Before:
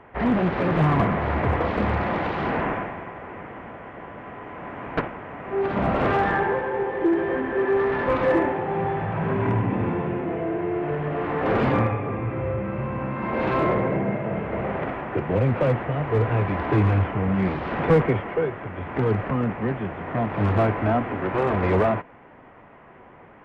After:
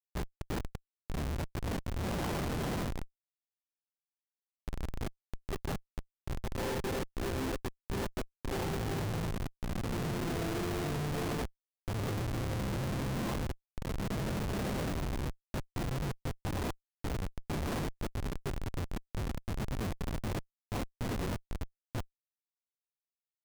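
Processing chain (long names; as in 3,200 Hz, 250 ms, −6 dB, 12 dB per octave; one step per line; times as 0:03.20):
compressor whose output falls as the input rises −26 dBFS, ratio −0.5
comparator with hysteresis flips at −23 dBFS
level −6.5 dB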